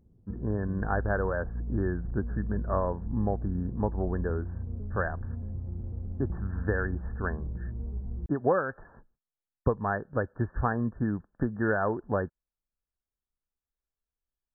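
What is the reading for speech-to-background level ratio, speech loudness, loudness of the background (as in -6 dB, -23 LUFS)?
6.5 dB, -31.5 LUFS, -38.0 LUFS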